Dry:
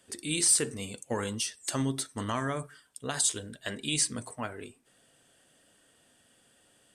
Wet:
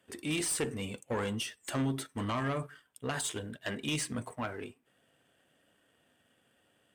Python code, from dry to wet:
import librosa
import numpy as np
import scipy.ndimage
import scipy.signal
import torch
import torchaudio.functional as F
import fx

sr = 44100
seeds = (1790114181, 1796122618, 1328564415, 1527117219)

y = fx.band_shelf(x, sr, hz=6500.0, db=-11.0, octaves=1.7)
y = fx.tube_stage(y, sr, drive_db=24.0, bias=0.5)
y = scipy.signal.sosfilt(scipy.signal.butter(2, 47.0, 'highpass', fs=sr, output='sos'), y)
y = fx.leveller(y, sr, passes=1)